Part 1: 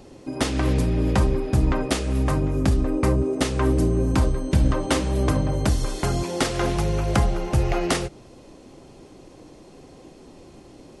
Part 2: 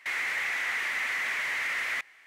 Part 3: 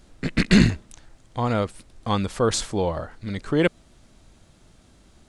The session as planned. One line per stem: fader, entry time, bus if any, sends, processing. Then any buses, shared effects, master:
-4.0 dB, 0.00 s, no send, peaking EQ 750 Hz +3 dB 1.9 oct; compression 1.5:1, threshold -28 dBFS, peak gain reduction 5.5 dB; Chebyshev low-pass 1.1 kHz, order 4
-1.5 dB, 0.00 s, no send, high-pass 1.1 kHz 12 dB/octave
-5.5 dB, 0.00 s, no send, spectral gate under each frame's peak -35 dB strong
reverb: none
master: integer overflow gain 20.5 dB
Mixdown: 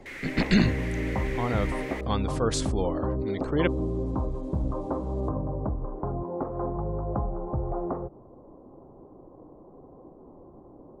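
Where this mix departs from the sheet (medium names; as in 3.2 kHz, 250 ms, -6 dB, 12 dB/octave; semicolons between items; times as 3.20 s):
stem 2 -1.5 dB -> -9.5 dB; master: missing integer overflow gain 20.5 dB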